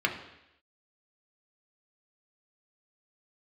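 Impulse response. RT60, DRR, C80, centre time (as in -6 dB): 0.85 s, 1.5 dB, 11.5 dB, 20 ms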